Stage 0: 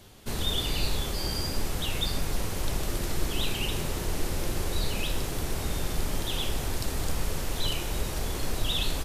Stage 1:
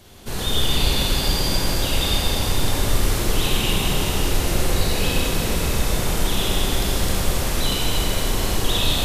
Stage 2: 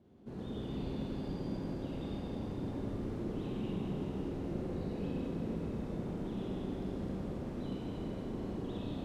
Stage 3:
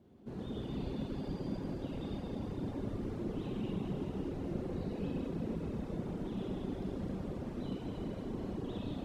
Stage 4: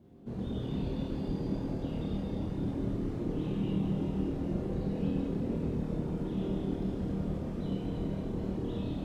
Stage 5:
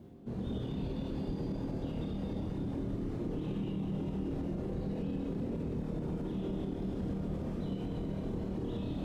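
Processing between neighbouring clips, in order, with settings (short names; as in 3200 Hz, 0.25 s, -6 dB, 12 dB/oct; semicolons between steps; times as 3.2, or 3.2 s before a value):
Schroeder reverb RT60 3.7 s, combs from 32 ms, DRR -6 dB; gain +3 dB
band-pass 240 Hz, Q 1.4; gain -7.5 dB
reverb removal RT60 0.62 s; gain +1.5 dB
low shelf 300 Hz +6 dB; on a send: flutter echo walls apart 4.4 m, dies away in 0.29 s
limiter -28.5 dBFS, peak gain reduction 7.5 dB; reverse; upward compressor, threshold -39 dBFS; reverse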